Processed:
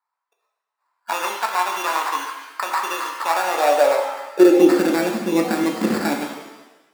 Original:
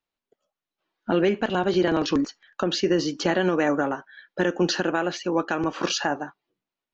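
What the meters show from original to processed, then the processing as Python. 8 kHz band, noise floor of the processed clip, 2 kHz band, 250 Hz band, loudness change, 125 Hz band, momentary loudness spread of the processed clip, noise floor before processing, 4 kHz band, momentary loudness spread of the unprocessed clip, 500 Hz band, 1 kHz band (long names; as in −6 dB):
can't be measured, −83 dBFS, +3.5 dB, +4.5 dB, +5.0 dB, −5.0 dB, 13 LU, below −85 dBFS, −0.5 dB, 9 LU, +5.0 dB, +8.5 dB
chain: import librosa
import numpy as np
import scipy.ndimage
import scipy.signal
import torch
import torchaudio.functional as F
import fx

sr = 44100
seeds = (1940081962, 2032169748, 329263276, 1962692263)

y = fx.sample_hold(x, sr, seeds[0], rate_hz=3100.0, jitter_pct=0)
y = fx.filter_sweep_highpass(y, sr, from_hz=1000.0, to_hz=220.0, start_s=3.22, end_s=5.01, q=6.9)
y = fx.rev_shimmer(y, sr, seeds[1], rt60_s=1.0, semitones=7, shimmer_db=-8, drr_db=2.0)
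y = F.gain(torch.from_numpy(y), -1.5).numpy()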